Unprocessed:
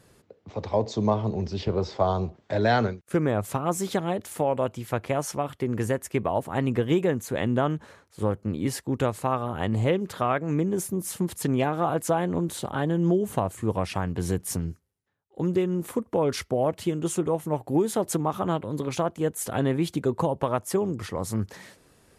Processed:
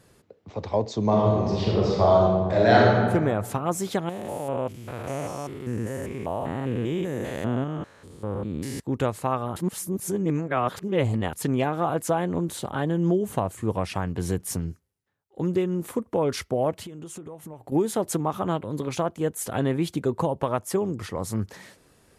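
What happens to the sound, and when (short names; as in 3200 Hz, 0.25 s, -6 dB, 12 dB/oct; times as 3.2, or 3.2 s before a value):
1.03–3.03 reverb throw, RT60 1.5 s, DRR -4 dB
4.09–8.8 stepped spectrum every 0.2 s
9.56–11.33 reverse
16.82–17.72 compressor 16:1, threshold -35 dBFS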